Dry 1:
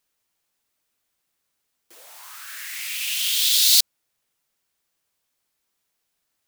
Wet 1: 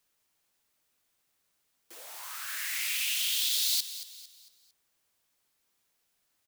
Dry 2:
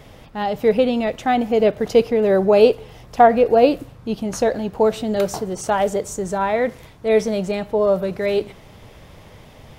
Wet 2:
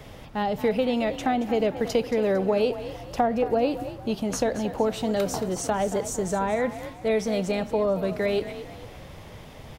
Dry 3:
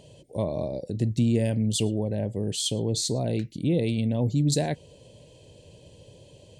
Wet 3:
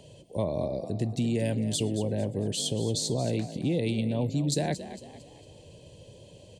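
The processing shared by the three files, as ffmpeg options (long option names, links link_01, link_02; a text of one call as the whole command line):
ffmpeg -i in.wav -filter_complex "[0:a]acrossover=split=270|600[link_01][link_02][link_03];[link_01]acompressor=threshold=-29dB:ratio=4[link_04];[link_02]acompressor=threshold=-31dB:ratio=4[link_05];[link_03]acompressor=threshold=-28dB:ratio=4[link_06];[link_04][link_05][link_06]amix=inputs=3:normalize=0,asplit=5[link_07][link_08][link_09][link_10][link_11];[link_08]adelay=226,afreqshift=44,volume=-13dB[link_12];[link_09]adelay=452,afreqshift=88,volume=-21dB[link_13];[link_10]adelay=678,afreqshift=132,volume=-28.9dB[link_14];[link_11]adelay=904,afreqshift=176,volume=-36.9dB[link_15];[link_07][link_12][link_13][link_14][link_15]amix=inputs=5:normalize=0" out.wav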